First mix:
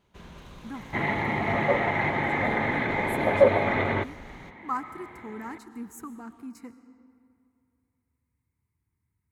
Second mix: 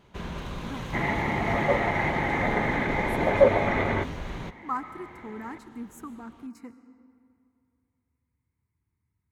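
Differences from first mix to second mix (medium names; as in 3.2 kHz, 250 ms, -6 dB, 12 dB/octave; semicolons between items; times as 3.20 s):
first sound +11.0 dB; master: add treble shelf 4.4 kHz -5.5 dB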